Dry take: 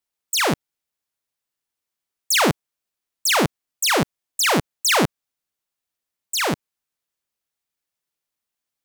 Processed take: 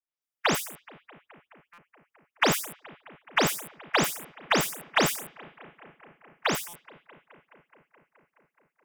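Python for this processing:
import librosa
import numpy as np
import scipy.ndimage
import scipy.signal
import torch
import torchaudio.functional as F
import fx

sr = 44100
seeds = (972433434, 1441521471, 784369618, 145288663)

p1 = fx.spec_delay(x, sr, highs='late', ms=215)
p2 = fx.low_shelf(p1, sr, hz=410.0, db=-5.0)
p3 = fx.leveller(p2, sr, passes=1)
p4 = fx.notch(p3, sr, hz=4200.0, q=6.0)
p5 = p4 + fx.echo_bbd(p4, sr, ms=212, stages=4096, feedback_pct=79, wet_db=-22.5, dry=0)
p6 = fx.dynamic_eq(p5, sr, hz=6600.0, q=0.72, threshold_db=-32.0, ratio=4.0, max_db=-6)
p7 = fx.buffer_glitch(p6, sr, at_s=(1.73, 6.68), block=256, repeats=8)
y = p7 * librosa.db_to_amplitude(-7.0)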